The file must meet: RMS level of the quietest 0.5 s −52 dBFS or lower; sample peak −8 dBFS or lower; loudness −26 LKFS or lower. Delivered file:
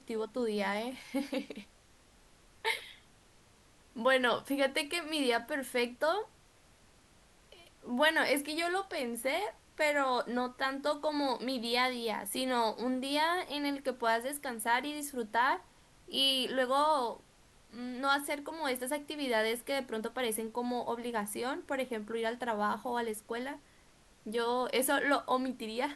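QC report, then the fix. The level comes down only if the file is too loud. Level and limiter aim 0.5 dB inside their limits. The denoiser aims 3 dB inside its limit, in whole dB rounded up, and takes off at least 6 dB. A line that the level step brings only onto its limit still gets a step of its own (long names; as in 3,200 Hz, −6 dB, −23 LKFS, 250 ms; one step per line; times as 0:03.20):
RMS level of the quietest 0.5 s −62 dBFS: in spec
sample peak −14.5 dBFS: in spec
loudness −33.0 LKFS: in spec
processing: no processing needed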